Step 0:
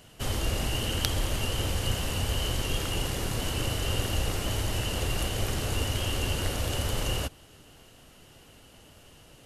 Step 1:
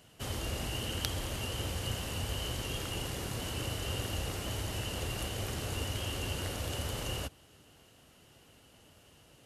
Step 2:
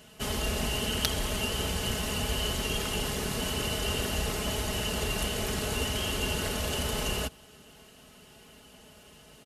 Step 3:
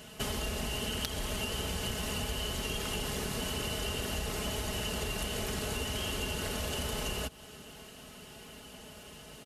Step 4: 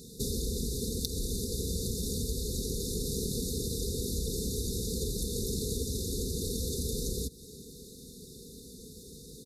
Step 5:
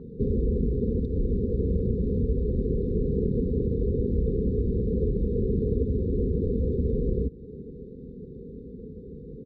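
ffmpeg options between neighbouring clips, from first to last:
-af "highpass=52,volume=-6dB"
-af "aecho=1:1:4.7:0.64,volume=5.5dB"
-af "acompressor=threshold=-36dB:ratio=6,volume=4dB"
-af "afftfilt=real='re*(1-between(b*sr/4096,530,3500))':imag='im*(1-between(b*sr/4096,530,3500))':win_size=4096:overlap=0.75,volume=3.5dB"
-af "lowpass=f=1.3k:w=0.5412,lowpass=f=1.3k:w=1.3066,volume=9dB"

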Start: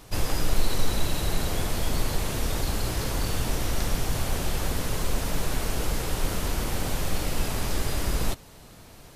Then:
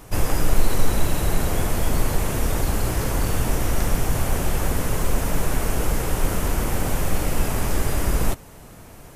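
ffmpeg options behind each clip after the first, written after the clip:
-af "equalizer=f=4.1k:t=o:w=1:g=-9,volume=5.5dB"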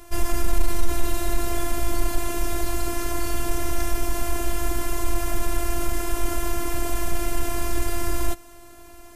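-af "acontrast=52,afftfilt=real='hypot(re,im)*cos(PI*b)':imag='0':win_size=512:overlap=0.75,volume=-4dB"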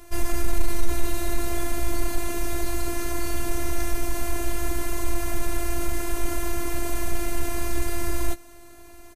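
-filter_complex "[0:a]asplit=2[a][b];[b]adelay=15,volume=-10.5dB[c];[a][c]amix=inputs=2:normalize=0,volume=-2dB"

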